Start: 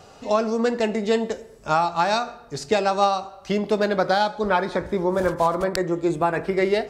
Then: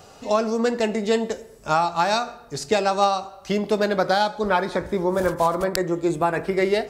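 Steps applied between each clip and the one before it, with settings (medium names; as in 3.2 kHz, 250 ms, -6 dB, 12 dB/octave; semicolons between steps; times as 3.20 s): treble shelf 9.1 kHz +10 dB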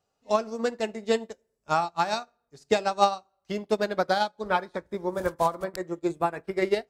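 upward expansion 2.5:1, over -36 dBFS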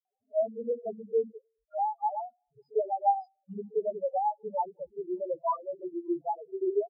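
loudest bins only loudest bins 1; three bands offset in time lows, mids, highs 50/630 ms, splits 210/4400 Hz; trim +4 dB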